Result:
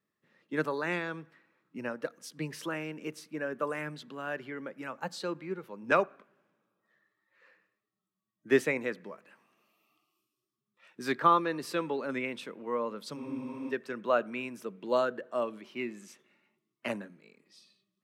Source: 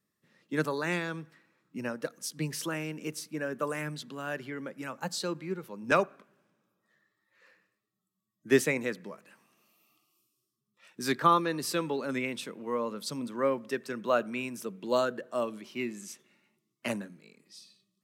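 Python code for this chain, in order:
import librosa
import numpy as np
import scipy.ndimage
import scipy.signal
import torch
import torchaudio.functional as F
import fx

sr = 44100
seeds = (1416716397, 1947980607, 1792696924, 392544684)

y = fx.bass_treble(x, sr, bass_db=-6, treble_db=-11)
y = fx.spec_freeze(y, sr, seeds[0], at_s=13.18, hold_s=0.52)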